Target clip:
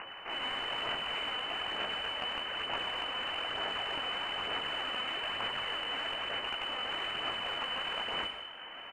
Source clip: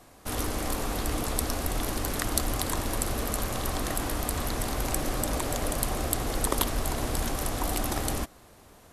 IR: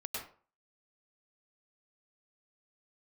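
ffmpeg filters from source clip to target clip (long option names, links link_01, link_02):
-filter_complex "[0:a]highpass=frequency=370:poles=1,acompressor=mode=upward:threshold=-43dB:ratio=2.5,alimiter=limit=-13.5dB:level=0:latency=1:release=195,areverse,acompressor=threshold=-35dB:ratio=6,areverse,flanger=delay=15:depth=4.7:speed=0.44,aeval=exprs='abs(val(0))':channel_layout=same,crystalizer=i=3.5:c=0,lowpass=frequency=2600:width_type=q:width=0.5098,lowpass=frequency=2600:width_type=q:width=0.6013,lowpass=frequency=2600:width_type=q:width=0.9,lowpass=frequency=2600:width_type=q:width=2.563,afreqshift=-3000,asplit=2[link_01][link_02];[link_02]highpass=frequency=720:poles=1,volume=10dB,asoftclip=type=tanh:threshold=-31dB[link_03];[link_01][link_03]amix=inputs=2:normalize=0,lowpass=frequency=1000:poles=1,volume=-6dB,asplit=4[link_04][link_05][link_06][link_07];[link_05]adelay=181,afreqshift=47,volume=-15dB[link_08];[link_06]adelay=362,afreqshift=94,volume=-23.9dB[link_09];[link_07]adelay=543,afreqshift=141,volume=-32.7dB[link_10];[link_04][link_08][link_09][link_10]amix=inputs=4:normalize=0,asplit=2[link_11][link_12];[1:a]atrim=start_sample=2205[link_13];[link_12][link_13]afir=irnorm=-1:irlink=0,volume=-3dB[link_14];[link_11][link_14]amix=inputs=2:normalize=0,aphaser=in_gain=1:out_gain=1:delay=4:decay=0.28:speed=1.1:type=sinusoidal,volume=7.5dB"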